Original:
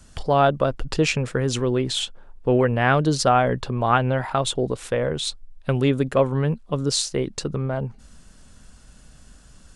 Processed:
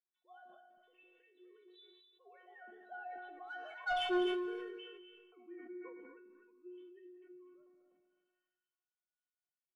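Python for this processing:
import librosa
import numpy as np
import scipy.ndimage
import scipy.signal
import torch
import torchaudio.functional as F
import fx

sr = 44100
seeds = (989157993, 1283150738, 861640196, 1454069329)

p1 = fx.sine_speech(x, sr)
p2 = fx.doppler_pass(p1, sr, speed_mps=38, closest_m=2.1, pass_at_s=3.97)
p3 = np.clip(p2, -10.0 ** (-35.0 / 20.0), 10.0 ** (-35.0 / 20.0))
p4 = p2 + (p3 * 10.0 ** (-10.5 / 20.0))
p5 = fx.stiff_resonator(p4, sr, f0_hz=360.0, decay_s=0.45, stiffness=0.002)
p6 = 10.0 ** (-38.5 / 20.0) * np.tanh(p5 / 10.0 ** (-38.5 / 20.0))
p7 = p6 + fx.echo_multitap(p6, sr, ms=(72, 180, 234, 251), db=(-17.5, -14.0, -16.0, -8.5), dry=0)
p8 = fx.rev_schroeder(p7, sr, rt60_s=1.1, comb_ms=28, drr_db=8.5)
p9 = fx.sustainer(p8, sr, db_per_s=31.0)
y = p9 * 10.0 ** (8.5 / 20.0)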